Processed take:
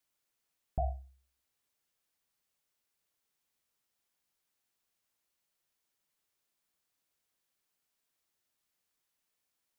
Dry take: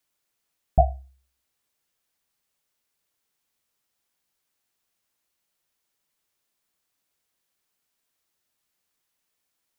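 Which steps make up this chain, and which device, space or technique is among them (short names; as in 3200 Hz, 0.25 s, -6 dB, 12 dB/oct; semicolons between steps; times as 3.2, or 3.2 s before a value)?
stacked limiters (limiter -11.5 dBFS, peak gain reduction 6.5 dB; limiter -18 dBFS, peak gain reduction 6.5 dB); gain -5 dB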